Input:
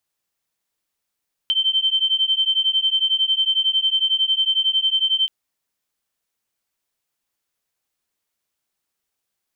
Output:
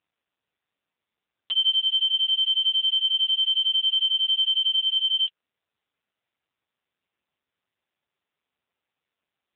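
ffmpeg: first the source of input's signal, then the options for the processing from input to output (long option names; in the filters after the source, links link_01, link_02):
-f lavfi -i "aevalsrc='0.106*(sin(2*PI*3100*t)+sin(2*PI*3111*t))':duration=3.78:sample_rate=44100"
-ar 8000 -c:a libopencore_amrnb -b:a 5900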